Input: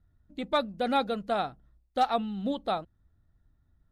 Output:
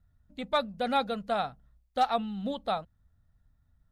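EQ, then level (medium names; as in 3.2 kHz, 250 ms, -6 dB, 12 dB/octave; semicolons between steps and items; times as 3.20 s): peaking EQ 340 Hz -14 dB 0.39 oct; 0.0 dB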